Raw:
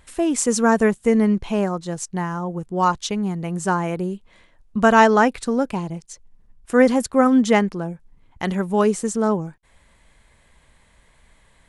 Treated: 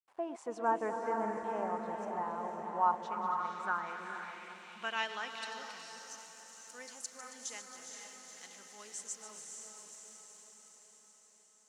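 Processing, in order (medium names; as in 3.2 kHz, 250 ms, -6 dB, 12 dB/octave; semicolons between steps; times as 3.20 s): backward echo that repeats 137 ms, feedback 75%, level -11.5 dB; small samples zeroed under -36 dBFS; echo that smears into a reverb 476 ms, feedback 61%, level -4 dB; band-pass sweep 860 Hz -> 6.5 kHz, 2.93–6.31 s; trim -8 dB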